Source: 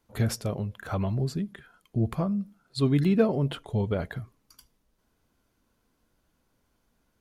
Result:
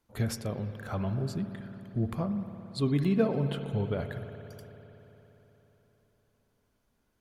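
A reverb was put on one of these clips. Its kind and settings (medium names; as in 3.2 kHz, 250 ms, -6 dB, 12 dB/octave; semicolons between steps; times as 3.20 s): spring tank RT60 3.8 s, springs 57 ms, chirp 65 ms, DRR 8 dB; trim -4 dB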